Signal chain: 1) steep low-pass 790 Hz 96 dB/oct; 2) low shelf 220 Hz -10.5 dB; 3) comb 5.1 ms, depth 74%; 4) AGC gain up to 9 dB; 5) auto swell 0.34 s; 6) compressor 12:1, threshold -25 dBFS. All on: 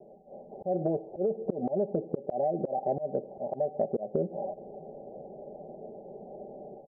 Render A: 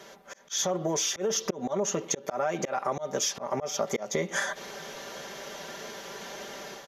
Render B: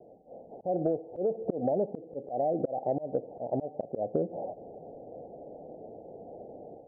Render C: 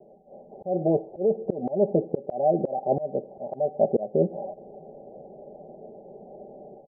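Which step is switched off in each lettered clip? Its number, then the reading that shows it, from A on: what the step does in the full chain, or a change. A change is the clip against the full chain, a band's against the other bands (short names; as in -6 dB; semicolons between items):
1, 1 kHz band +3.5 dB; 3, momentary loudness spread change +2 LU; 6, mean gain reduction 2.0 dB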